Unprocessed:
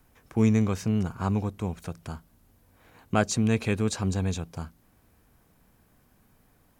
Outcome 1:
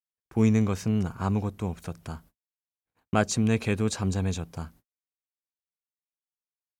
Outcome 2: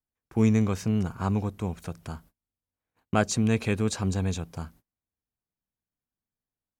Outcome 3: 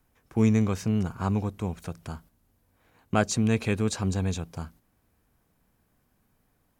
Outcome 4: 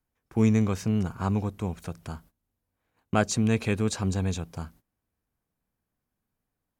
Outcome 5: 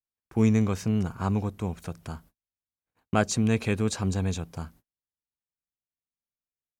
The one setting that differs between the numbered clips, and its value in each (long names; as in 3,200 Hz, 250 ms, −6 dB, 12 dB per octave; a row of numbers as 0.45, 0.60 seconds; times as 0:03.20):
noise gate, range: −59, −33, −7, −21, −45 decibels